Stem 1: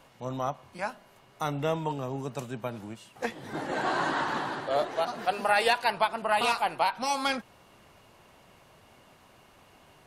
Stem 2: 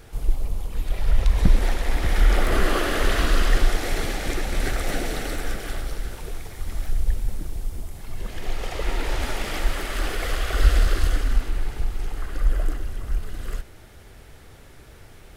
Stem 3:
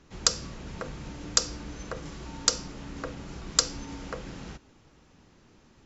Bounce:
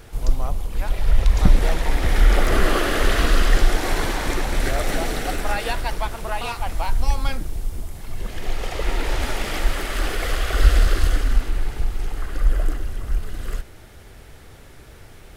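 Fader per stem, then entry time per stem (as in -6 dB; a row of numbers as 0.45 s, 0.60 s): -3.0 dB, +2.5 dB, -19.0 dB; 0.00 s, 0.00 s, 0.00 s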